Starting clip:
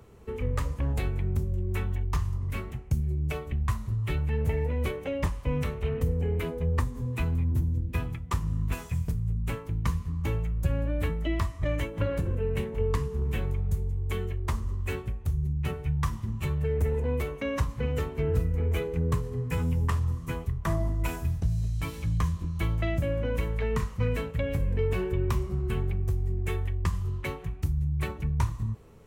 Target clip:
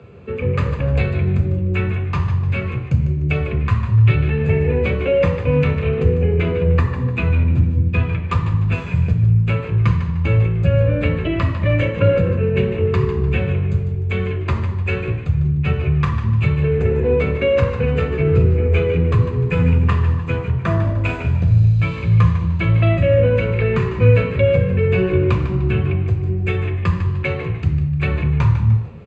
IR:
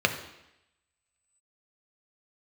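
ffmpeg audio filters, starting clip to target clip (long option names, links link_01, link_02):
-filter_complex "[0:a]lowpass=4200,asplit=5[link_01][link_02][link_03][link_04][link_05];[link_02]adelay=150,afreqshift=-63,volume=-10dB[link_06];[link_03]adelay=300,afreqshift=-126,volume=-18.9dB[link_07];[link_04]adelay=450,afreqshift=-189,volume=-27.7dB[link_08];[link_05]adelay=600,afreqshift=-252,volume=-36.6dB[link_09];[link_01][link_06][link_07][link_08][link_09]amix=inputs=5:normalize=0[link_10];[1:a]atrim=start_sample=2205[link_11];[link_10][link_11]afir=irnorm=-1:irlink=0,volume=-1.5dB"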